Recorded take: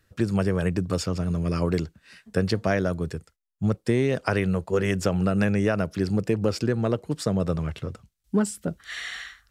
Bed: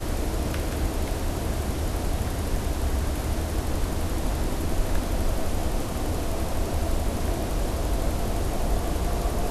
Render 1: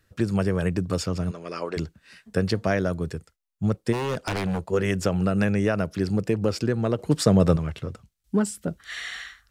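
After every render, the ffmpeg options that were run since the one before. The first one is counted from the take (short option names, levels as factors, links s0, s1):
-filter_complex "[0:a]asplit=3[s0][s1][s2];[s0]afade=t=out:st=1.3:d=0.02[s3];[s1]highpass=460,lowpass=6400,afade=t=in:st=1.3:d=0.02,afade=t=out:st=1.76:d=0.02[s4];[s2]afade=t=in:st=1.76:d=0.02[s5];[s3][s4][s5]amix=inputs=3:normalize=0,asplit=3[s6][s7][s8];[s6]afade=t=out:st=3.92:d=0.02[s9];[s7]aeval=exprs='0.1*(abs(mod(val(0)/0.1+3,4)-2)-1)':c=same,afade=t=in:st=3.92:d=0.02,afade=t=out:st=4.59:d=0.02[s10];[s8]afade=t=in:st=4.59:d=0.02[s11];[s9][s10][s11]amix=inputs=3:normalize=0,asettb=1/sr,asplit=3[s12][s13][s14];[s12]atrim=end=6.994[s15];[s13]atrim=start=6.99:end=7.57,asetpts=PTS-STARTPTS,afade=t=in:d=0.004:c=qsin,afade=t=out:st=0.576:d=0.004:c=qsin,acontrast=81[s16];[s14]atrim=start=7.566[s17];[s15][s16]acrossfade=d=0.004:c1=hsin:c2=qsin[s18];[s18][s17]acrossfade=d=0.004:c1=qsin:c2=hsin"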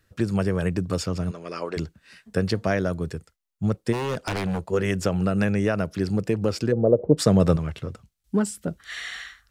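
-filter_complex "[0:a]asplit=3[s0][s1][s2];[s0]afade=t=out:st=6.71:d=0.02[s3];[s1]lowpass=f=530:t=q:w=3.6,afade=t=in:st=6.71:d=0.02,afade=t=out:st=7.17:d=0.02[s4];[s2]afade=t=in:st=7.17:d=0.02[s5];[s3][s4][s5]amix=inputs=3:normalize=0"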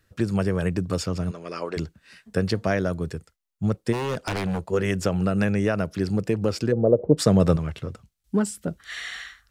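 -af anull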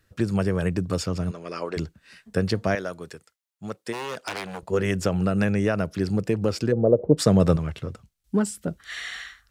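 -filter_complex "[0:a]asettb=1/sr,asplit=3[s0][s1][s2];[s0]atrim=end=2.754[s3];[s1]atrim=start=2.75:end=4.63,asetpts=PTS-STARTPTS,afade=t=in:d=0.004:c=qsin,afade=t=out:st=1.876:d=0.004:c=qsin,highpass=f=730:p=1[s4];[s2]atrim=start=4.626[s5];[s3][s4]acrossfade=d=0.004:c1=hsin:c2=qsin[s6];[s6][s5]acrossfade=d=0.004:c1=qsin:c2=hsin"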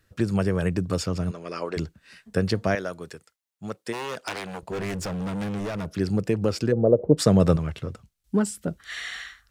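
-filter_complex "[0:a]asettb=1/sr,asplit=3[s0][s1][s2];[s0]atrim=end=4.344[s3];[s1]atrim=start=4.34:end=5.86,asetpts=PTS-STARTPTS,afade=t=in:d=0.004:c=qsin,afade=t=out:st=1.516:d=0.004:c=qsin,volume=23.7,asoftclip=hard,volume=0.0422[s4];[s2]atrim=start=5.856[s5];[s3][s4]acrossfade=d=0.004:c1=hsin:c2=qsin[s6];[s6][s5]acrossfade=d=0.004:c1=qsin:c2=hsin"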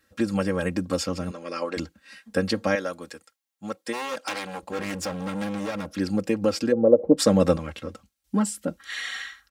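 -af "highpass=f=190:p=1,aecho=1:1:3.7:0.83"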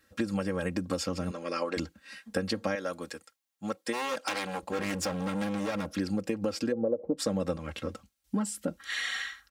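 -af "acompressor=threshold=0.0447:ratio=5"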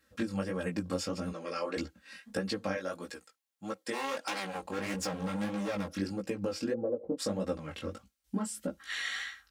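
-af "flanger=delay=15:depth=7.2:speed=1.6"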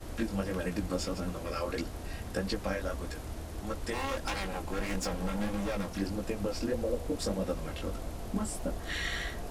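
-filter_complex "[1:a]volume=0.211[s0];[0:a][s0]amix=inputs=2:normalize=0"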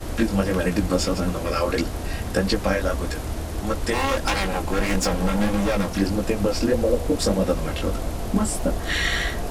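-af "volume=3.76"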